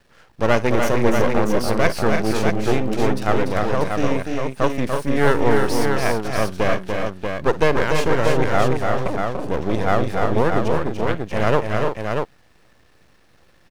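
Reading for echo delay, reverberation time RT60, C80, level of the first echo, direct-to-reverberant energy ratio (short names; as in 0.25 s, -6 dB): 55 ms, none, none, -17.5 dB, none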